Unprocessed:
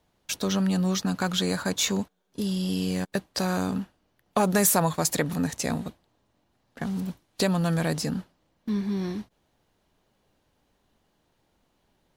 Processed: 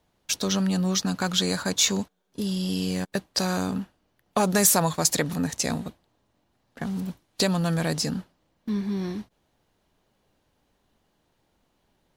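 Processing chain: dynamic EQ 5400 Hz, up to +6 dB, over -41 dBFS, Q 0.82

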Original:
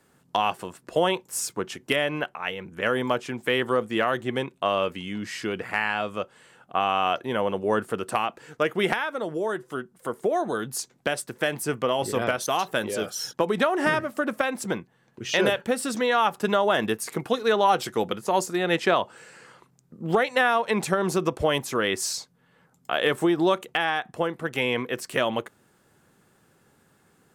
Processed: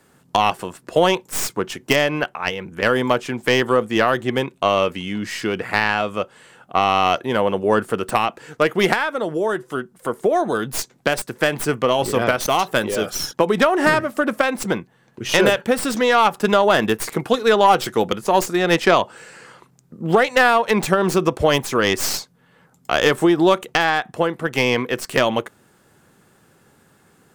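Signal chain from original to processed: tracing distortion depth 0.088 ms; gain +6.5 dB

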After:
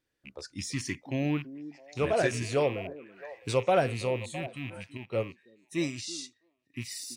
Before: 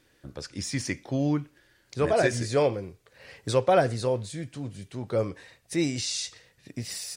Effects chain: rattling part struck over -37 dBFS, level -26 dBFS; spectral noise reduction 15 dB; on a send: delay with a stepping band-pass 0.33 s, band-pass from 280 Hz, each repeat 1.4 oct, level -11.5 dB; 4.97–6.74 on the sum: upward expander 1.5:1, over -47 dBFS; gain -3.5 dB

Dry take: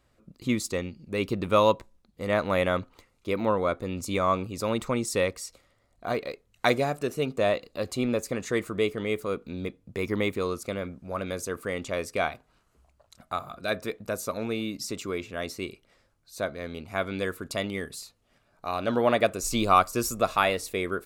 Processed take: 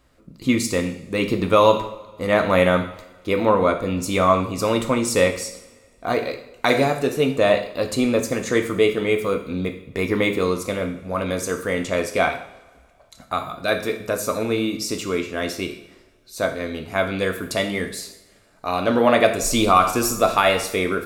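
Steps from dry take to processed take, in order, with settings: two-slope reverb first 0.62 s, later 2 s, from -20 dB, DRR 4 dB; maximiser +9.5 dB; gain -3 dB

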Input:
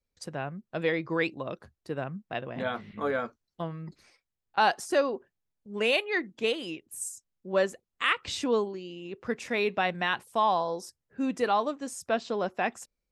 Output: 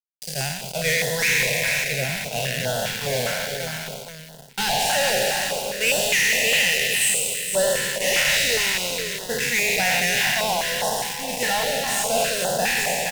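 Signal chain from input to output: spectral trails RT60 2.65 s; EQ curve 140 Hz 0 dB, 210 Hz -18 dB, 2200 Hz +2 dB, 3600 Hz -4 dB; requantised 8-bit, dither none; fuzz box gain 33 dB, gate -38 dBFS; fixed phaser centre 320 Hz, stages 6; echo 0.465 s -7 dB; stepped notch 4.9 Hz 380–2300 Hz

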